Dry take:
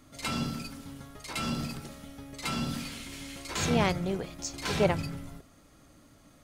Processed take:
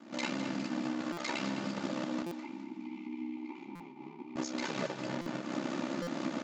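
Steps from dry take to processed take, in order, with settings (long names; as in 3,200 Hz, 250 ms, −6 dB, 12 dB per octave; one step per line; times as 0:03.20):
each half-wave held at its own peak
camcorder AGC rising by 53 dB per second
Chebyshev band-pass filter 160–7,200 Hz, order 5
high-shelf EQ 5,700 Hz −9.5 dB
comb filter 3.4 ms, depth 67%
downward compressor 6 to 1, threshold −31 dBFS, peak gain reduction 16.5 dB
0:02.22–0:04.36: formant filter u
ring modulation 33 Hz
feedback echo with a high-pass in the loop 207 ms, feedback 51%, high-pass 670 Hz, level −9.5 dB
buffer that repeats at 0:01.12/0:02.26/0:03.75/0:05.21/0:06.02, samples 256, times 8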